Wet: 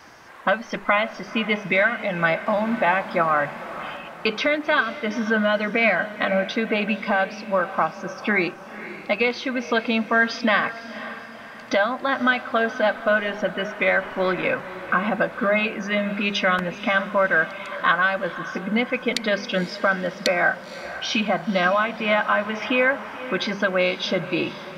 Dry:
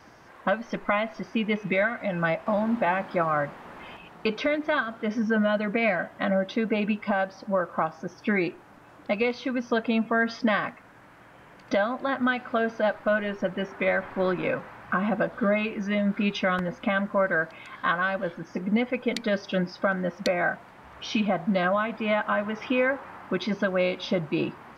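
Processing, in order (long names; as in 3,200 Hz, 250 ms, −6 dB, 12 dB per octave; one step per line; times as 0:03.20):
tilt shelving filter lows −4 dB, about 820 Hz
mains-hum notches 50/100/150/200 Hz
feedback delay with all-pass diffusion 515 ms, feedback 44%, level −14 dB
level +4.5 dB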